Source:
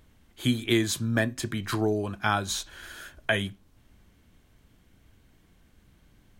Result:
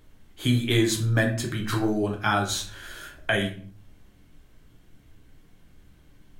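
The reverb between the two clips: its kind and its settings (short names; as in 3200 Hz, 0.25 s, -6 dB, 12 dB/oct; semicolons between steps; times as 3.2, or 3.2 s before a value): shoebox room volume 45 m³, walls mixed, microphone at 0.52 m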